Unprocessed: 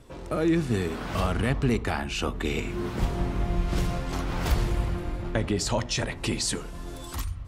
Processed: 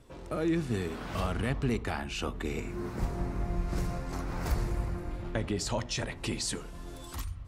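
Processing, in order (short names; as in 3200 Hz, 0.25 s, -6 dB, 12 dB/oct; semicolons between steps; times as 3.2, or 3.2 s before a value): 2.42–5.11 bell 3200 Hz -10 dB 0.58 oct; gain -5.5 dB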